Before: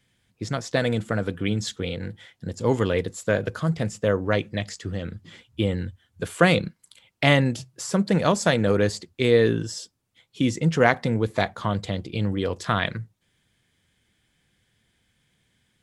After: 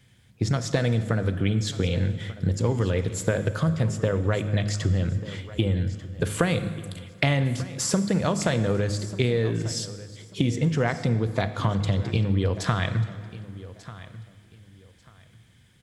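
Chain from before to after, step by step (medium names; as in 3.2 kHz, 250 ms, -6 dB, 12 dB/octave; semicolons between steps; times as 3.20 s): peaking EQ 100 Hz +9.5 dB 1.5 oct; de-hum 51.85 Hz, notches 6; compression 10:1, threshold -26 dBFS, peak gain reduction 16 dB; feedback delay 1191 ms, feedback 24%, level -17 dB; reverberation RT60 2.0 s, pre-delay 28 ms, DRR 11.5 dB; trim +6 dB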